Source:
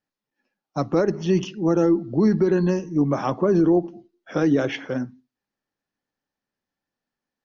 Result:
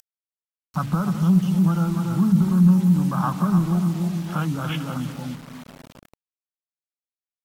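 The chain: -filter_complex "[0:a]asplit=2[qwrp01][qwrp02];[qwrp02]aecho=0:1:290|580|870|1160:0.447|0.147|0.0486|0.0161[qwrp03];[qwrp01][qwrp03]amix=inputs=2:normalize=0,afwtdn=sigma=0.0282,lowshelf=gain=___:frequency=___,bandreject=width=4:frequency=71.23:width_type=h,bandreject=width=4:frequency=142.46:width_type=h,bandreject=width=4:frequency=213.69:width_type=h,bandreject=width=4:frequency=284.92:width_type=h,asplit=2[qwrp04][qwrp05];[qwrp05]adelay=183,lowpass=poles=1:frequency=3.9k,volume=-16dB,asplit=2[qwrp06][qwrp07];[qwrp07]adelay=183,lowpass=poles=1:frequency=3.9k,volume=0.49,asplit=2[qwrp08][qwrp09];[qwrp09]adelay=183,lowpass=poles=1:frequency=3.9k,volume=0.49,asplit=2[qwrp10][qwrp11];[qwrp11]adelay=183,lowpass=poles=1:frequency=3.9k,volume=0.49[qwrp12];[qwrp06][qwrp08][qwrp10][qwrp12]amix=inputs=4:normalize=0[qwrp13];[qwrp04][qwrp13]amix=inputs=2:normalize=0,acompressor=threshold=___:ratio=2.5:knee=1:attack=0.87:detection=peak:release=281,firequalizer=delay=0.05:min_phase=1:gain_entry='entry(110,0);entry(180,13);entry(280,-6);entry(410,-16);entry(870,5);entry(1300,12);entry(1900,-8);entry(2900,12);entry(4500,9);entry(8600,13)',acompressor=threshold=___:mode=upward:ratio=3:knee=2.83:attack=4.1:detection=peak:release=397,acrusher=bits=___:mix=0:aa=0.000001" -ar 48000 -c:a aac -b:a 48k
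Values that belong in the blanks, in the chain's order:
11.5, 93, -22dB, -33dB, 6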